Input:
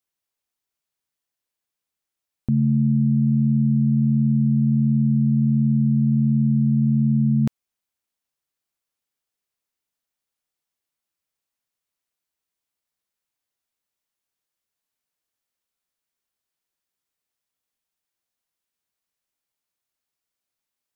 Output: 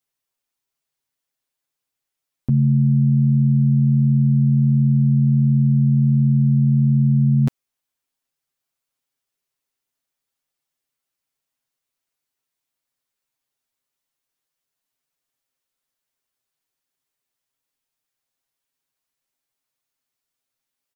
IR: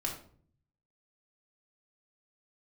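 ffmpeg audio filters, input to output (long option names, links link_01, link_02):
-af "aecho=1:1:7.5:0.81"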